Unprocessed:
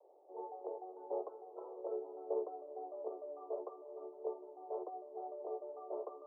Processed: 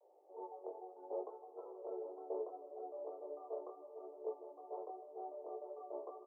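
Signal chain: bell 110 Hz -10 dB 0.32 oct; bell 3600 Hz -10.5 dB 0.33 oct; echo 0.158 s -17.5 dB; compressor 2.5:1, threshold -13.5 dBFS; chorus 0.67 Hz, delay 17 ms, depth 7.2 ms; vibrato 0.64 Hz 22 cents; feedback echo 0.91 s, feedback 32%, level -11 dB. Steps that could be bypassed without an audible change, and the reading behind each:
bell 110 Hz: input band starts at 290 Hz; bell 3600 Hz: input band ends at 1200 Hz; compressor, threshold -13.5 dBFS: input peak -26.5 dBFS

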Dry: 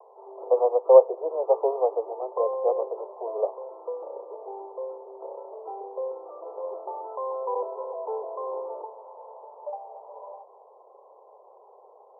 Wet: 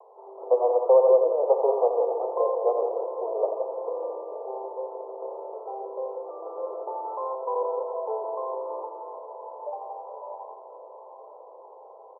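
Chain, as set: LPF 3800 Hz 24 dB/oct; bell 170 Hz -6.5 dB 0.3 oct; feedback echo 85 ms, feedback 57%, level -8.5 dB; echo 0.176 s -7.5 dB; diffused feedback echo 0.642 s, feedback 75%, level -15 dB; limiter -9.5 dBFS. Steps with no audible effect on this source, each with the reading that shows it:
LPF 3800 Hz: input band ends at 1200 Hz; bell 170 Hz: input band starts at 320 Hz

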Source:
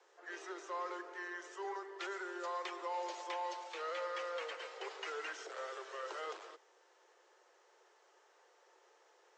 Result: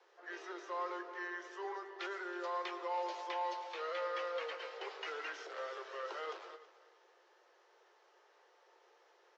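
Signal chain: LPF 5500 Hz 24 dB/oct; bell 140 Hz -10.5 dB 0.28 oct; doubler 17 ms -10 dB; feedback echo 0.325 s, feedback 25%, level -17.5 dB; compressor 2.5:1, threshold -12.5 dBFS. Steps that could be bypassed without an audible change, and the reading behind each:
bell 140 Hz: input band starts at 300 Hz; compressor, threshold -12.5 dBFS: input peak -27.0 dBFS

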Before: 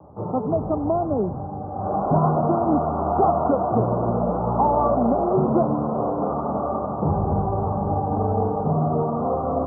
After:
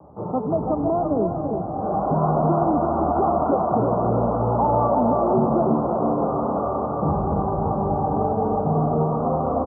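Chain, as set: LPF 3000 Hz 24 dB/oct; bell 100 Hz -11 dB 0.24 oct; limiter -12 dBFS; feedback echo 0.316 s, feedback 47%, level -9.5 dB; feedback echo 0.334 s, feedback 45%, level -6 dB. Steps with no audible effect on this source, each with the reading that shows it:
LPF 3000 Hz: input band ends at 1400 Hz

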